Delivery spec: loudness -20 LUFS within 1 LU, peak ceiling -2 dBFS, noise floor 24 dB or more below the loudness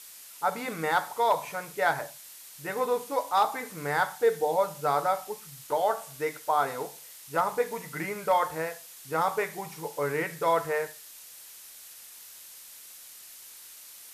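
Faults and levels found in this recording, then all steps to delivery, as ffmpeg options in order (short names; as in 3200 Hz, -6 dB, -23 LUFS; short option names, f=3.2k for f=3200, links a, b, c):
noise floor -48 dBFS; noise floor target -53 dBFS; loudness -29.0 LUFS; peak -13.5 dBFS; loudness target -20.0 LUFS
-> -af "afftdn=nr=6:nf=-48"
-af "volume=9dB"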